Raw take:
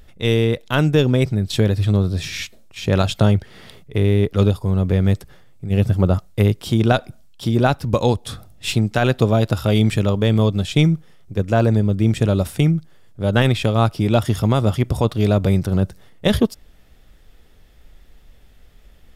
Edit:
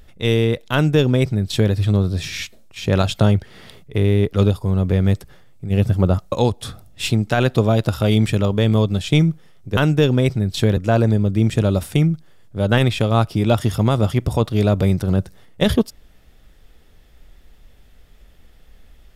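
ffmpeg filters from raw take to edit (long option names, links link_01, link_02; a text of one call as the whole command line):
ffmpeg -i in.wav -filter_complex "[0:a]asplit=4[link_01][link_02][link_03][link_04];[link_01]atrim=end=6.322[link_05];[link_02]atrim=start=7.958:end=11.412[link_06];[link_03]atrim=start=0.728:end=1.732[link_07];[link_04]atrim=start=11.408[link_08];[link_05][link_06]acrossfade=duration=0.004:curve1=hsin:curve2=hsin[link_09];[link_09][link_07]acrossfade=duration=0.004:curve1=hsin:curve2=hsin[link_10];[link_10][link_08]acrossfade=duration=0.004:curve1=hsin:curve2=hsin" out.wav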